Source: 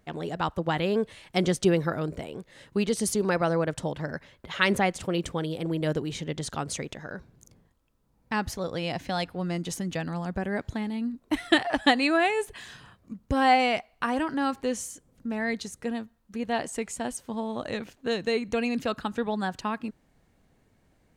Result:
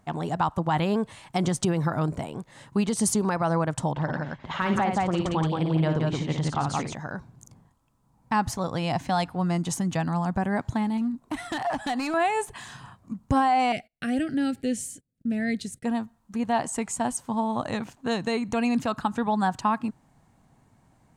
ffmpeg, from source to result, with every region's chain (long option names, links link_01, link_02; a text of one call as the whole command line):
ffmpeg -i in.wav -filter_complex "[0:a]asettb=1/sr,asplit=3[link_01][link_02][link_03];[link_01]atrim=end=3.914[link_04];[link_02]atrim=start=3.91:end=6.95,asetpts=PTS-STARTPTS,afade=type=in:duration=0.004:curve=qsin,afade=type=out:start_time=3.036:duration=0.004:curve=qsin,lowpass=4500,deesser=0.85,aecho=1:1:56|173:0.473|0.631,atrim=end_sample=134064[link_05];[link_03]atrim=start=6.946[link_06];[link_04][link_05]acrossfade=duration=0.004:curve1=hsin:curve2=qsin[link_07];[link_07][link_06]acrossfade=duration=0.004:curve1=qsin:curve2=hsin,asettb=1/sr,asplit=3[link_08][link_09][link_10];[link_08]atrim=end=10.974[link_11];[link_09]atrim=start=10.97:end=12.14,asetpts=PTS-STARTPTS,afade=type=in:duration=0.004:curve=qsin,afade=type=out:start_time=1.166:duration=0.004:curve=qsin,acompressor=threshold=-28dB:ratio=3:attack=3.2:release=140:knee=1:detection=peak,volume=27.5dB,asoftclip=hard,volume=-27.5dB[link_12];[link_10]atrim=start=12.136[link_13];[link_11][link_12]acrossfade=duration=0.004:curve1=hsin:curve2=qsin[link_14];[link_14][link_13]acrossfade=duration=0.004:curve1=qsin:curve2=hsin,asettb=1/sr,asplit=3[link_15][link_16][link_17];[link_15]atrim=end=13.724[link_18];[link_16]atrim=start=13.72:end=15.85,asetpts=PTS-STARTPTS,afade=type=in:duration=0.004:curve=qsin,afade=type=out:start_time=2.126:duration=0.004:curve=qsin,agate=range=-24dB:threshold=-54dB:ratio=16:release=100:detection=peak,asuperstop=centerf=1000:order=4:qfactor=0.79,equalizer=frequency=6300:width=2.3:gain=-7.5[link_19];[link_17]atrim=start=15.846[link_20];[link_18][link_19]acrossfade=duration=0.004:curve1=hsin:curve2=qsin[link_21];[link_21][link_20]acrossfade=duration=0.004:curve1=qsin:curve2=hsin,equalizer=frequency=740:width_type=o:width=0.94:gain=6,alimiter=limit=-17dB:level=0:latency=1:release=97,equalizer=frequency=125:width_type=o:width=1:gain=10,equalizer=frequency=250:width_type=o:width=1:gain=5,equalizer=frequency=500:width_type=o:width=1:gain=-5,equalizer=frequency=1000:width_type=o:width=1:gain=9,equalizer=frequency=8000:width_type=o:width=1:gain=8,volume=-2dB" out.wav